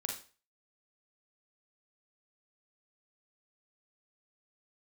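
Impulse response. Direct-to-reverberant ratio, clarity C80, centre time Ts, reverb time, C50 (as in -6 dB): 0.5 dB, 12.0 dB, 27 ms, 0.35 s, 5.0 dB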